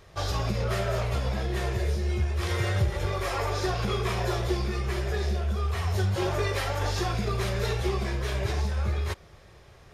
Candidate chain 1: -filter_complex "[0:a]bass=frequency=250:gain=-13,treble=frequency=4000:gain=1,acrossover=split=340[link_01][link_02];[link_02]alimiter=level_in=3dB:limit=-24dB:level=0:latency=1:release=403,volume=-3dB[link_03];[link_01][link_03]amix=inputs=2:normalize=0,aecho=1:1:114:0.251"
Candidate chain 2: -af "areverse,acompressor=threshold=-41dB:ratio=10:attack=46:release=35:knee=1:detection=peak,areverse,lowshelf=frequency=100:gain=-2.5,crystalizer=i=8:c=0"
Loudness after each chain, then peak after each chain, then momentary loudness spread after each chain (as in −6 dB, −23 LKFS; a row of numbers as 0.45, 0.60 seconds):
−35.5, −32.5 LKFS; −21.0, −17.0 dBFS; 3, 8 LU